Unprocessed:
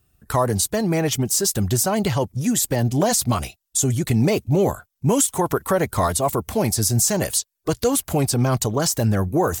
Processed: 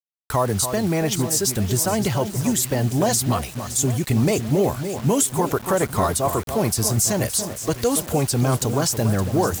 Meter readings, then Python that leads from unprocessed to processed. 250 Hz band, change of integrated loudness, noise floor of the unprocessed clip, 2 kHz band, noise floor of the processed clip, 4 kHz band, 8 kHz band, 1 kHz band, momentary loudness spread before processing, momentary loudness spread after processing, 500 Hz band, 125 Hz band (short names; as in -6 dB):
-0.5 dB, -0.5 dB, -78 dBFS, -0.5 dB, -37 dBFS, -0.5 dB, -0.5 dB, -0.5 dB, 4 LU, 4 LU, -0.5 dB, -0.5 dB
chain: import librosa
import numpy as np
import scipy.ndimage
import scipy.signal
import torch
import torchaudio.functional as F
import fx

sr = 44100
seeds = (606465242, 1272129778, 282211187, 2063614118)

y = fx.echo_alternate(x, sr, ms=284, hz=1600.0, feedback_pct=68, wet_db=-9.0)
y = fx.quant_dither(y, sr, seeds[0], bits=6, dither='none')
y = y * 10.0 ** (-1.0 / 20.0)